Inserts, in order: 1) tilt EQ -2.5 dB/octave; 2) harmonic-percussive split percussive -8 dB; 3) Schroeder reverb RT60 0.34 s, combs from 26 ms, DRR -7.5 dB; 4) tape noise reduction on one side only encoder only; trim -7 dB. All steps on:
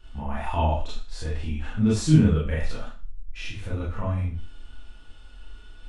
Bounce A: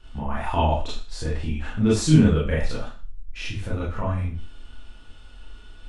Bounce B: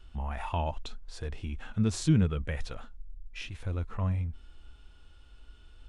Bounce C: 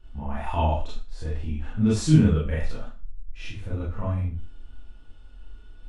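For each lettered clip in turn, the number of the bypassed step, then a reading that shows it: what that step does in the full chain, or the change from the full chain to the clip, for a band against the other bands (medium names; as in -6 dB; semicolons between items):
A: 2, 125 Hz band -3.0 dB; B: 3, momentary loudness spread change -2 LU; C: 4, 2 kHz band -2.0 dB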